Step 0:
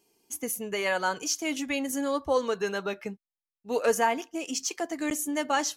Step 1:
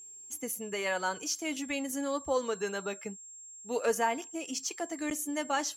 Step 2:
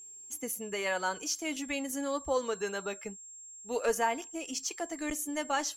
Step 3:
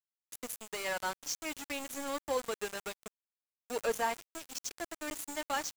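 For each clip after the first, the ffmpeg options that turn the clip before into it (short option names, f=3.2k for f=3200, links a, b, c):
-af "aeval=exprs='val(0)+0.00794*sin(2*PI*7500*n/s)':c=same,volume=-4.5dB"
-af "asubboost=boost=7:cutoff=54"
-af "aeval=exprs='val(0)*gte(abs(val(0)),0.0237)':c=same,volume=-3dB"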